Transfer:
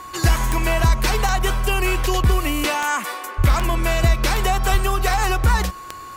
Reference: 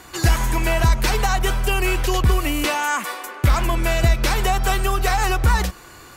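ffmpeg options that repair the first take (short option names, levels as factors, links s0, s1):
-filter_complex "[0:a]adeclick=t=4,bandreject=f=1100:w=30,asplit=3[s0][s1][s2];[s0]afade=t=out:st=3.37:d=0.02[s3];[s1]highpass=f=140:w=0.5412,highpass=f=140:w=1.3066,afade=t=in:st=3.37:d=0.02,afade=t=out:st=3.49:d=0.02[s4];[s2]afade=t=in:st=3.49:d=0.02[s5];[s3][s4][s5]amix=inputs=3:normalize=0,asplit=3[s6][s7][s8];[s6]afade=t=out:st=4.71:d=0.02[s9];[s7]highpass=f=140:w=0.5412,highpass=f=140:w=1.3066,afade=t=in:st=4.71:d=0.02,afade=t=out:st=4.83:d=0.02[s10];[s8]afade=t=in:st=4.83:d=0.02[s11];[s9][s10][s11]amix=inputs=3:normalize=0"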